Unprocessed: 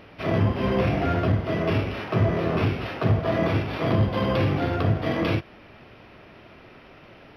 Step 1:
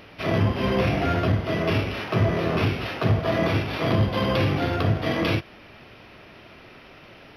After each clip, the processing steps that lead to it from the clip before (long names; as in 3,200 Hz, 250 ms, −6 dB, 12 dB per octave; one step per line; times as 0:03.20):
high-shelf EQ 2,700 Hz +8 dB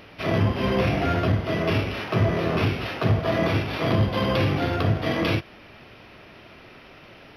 no processing that can be heard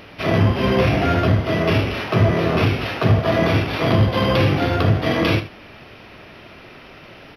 single-tap delay 77 ms −13 dB
level +5 dB